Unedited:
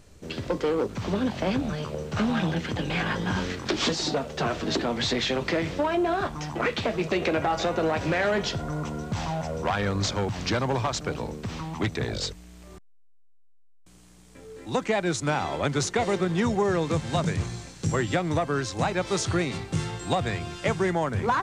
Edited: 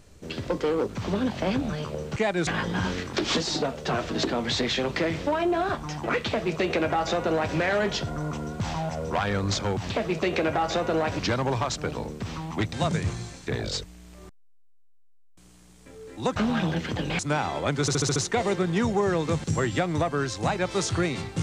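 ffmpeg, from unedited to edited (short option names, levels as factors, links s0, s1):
-filter_complex "[0:a]asplit=15[s0][s1][s2][s3][s4][s5][s6][s7][s8][s9][s10][s11][s12][s13][s14];[s0]atrim=end=2.162[s15];[s1]atrim=start=14.848:end=15.162[s16];[s2]atrim=start=2.988:end=10.422[s17];[s3]atrim=start=6.788:end=8.082[s18];[s4]atrim=start=10.418:end=11.962[s19];[s5]atrim=start=17.058:end=17.802[s20];[s6]atrim=start=11.958:end=14.852[s21];[s7]atrim=start=2.158:end=2.992[s22];[s8]atrim=start=15.158:end=15.852[s23];[s9]atrim=start=15.778:end=15.852[s24];[s10]atrim=start=15.778:end=15.852[s25];[s11]atrim=start=15.778:end=15.852[s26];[s12]atrim=start=15.778:end=15.852[s27];[s13]atrim=start=15.778:end=17.062[s28];[s14]atrim=start=17.798[s29];[s15][s16]acrossfade=d=0.004:c1=hsin:c2=hsin[s30];[s30][s17]acrossfade=d=0.004:c1=hsin:c2=hsin[s31];[s31][s18]acrossfade=d=0.004:c1=hsin:c2=hsin[s32];[s32][s19]acrossfade=d=0.004:c1=hsin:c2=hsin[s33];[s33][s20]acrossfade=d=0.004:c1=hsin:c2=hsin[s34];[s34][s21]acrossfade=d=0.004:c1=hsin:c2=hsin[s35];[s35][s22]acrossfade=d=0.004:c1=hsin:c2=hsin[s36];[s36][s23]acrossfade=d=0.004:c1=hsin:c2=hsin[s37];[s37][s24]acrossfade=d=0.004:c1=hsin:c2=hsin[s38];[s38][s25]acrossfade=d=0.004:c1=hsin:c2=hsin[s39];[s39][s26]acrossfade=d=0.004:c1=hsin:c2=hsin[s40];[s40][s27]acrossfade=d=0.004:c1=hsin:c2=hsin[s41];[s41][s28]acrossfade=d=0.004:c1=hsin:c2=hsin[s42];[s42][s29]acrossfade=d=0.004:c1=hsin:c2=hsin"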